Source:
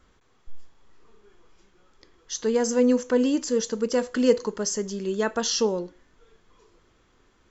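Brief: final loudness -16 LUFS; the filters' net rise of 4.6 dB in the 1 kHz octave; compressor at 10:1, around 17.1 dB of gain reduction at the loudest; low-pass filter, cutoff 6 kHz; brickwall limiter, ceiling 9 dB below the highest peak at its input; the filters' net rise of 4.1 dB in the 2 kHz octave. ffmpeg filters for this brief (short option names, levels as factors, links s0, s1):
-af "lowpass=6000,equalizer=f=1000:t=o:g=5,equalizer=f=2000:t=o:g=3.5,acompressor=threshold=0.0316:ratio=10,volume=13.3,alimiter=limit=0.447:level=0:latency=1"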